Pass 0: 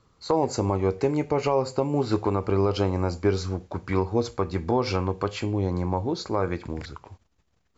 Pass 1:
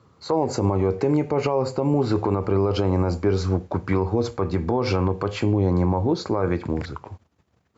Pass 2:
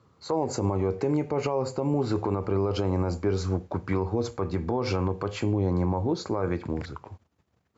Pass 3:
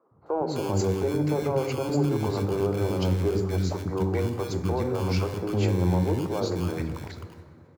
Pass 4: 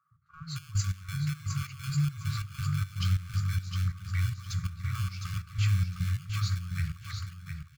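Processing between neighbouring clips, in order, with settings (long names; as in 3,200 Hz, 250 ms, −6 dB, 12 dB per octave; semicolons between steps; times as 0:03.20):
high-pass filter 77 Hz 24 dB per octave; high-shelf EQ 2,200 Hz −9 dB; brickwall limiter −19.5 dBFS, peak gain reduction 9 dB; level +8 dB
dynamic equaliser 6,900 Hz, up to +5 dB, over −53 dBFS, Q 2.9; level −5 dB
in parallel at −9.5 dB: decimation without filtering 23×; on the sum: three-band delay without the direct sound mids, lows, highs 110/260 ms, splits 310/1,300 Hz; dense smooth reverb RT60 3 s, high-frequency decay 0.5×, DRR 10 dB
gate pattern "xx..xxx.." 180 BPM −12 dB; linear-phase brick-wall band-stop 170–1,100 Hz; on a send: repeating echo 709 ms, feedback 21%, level −6 dB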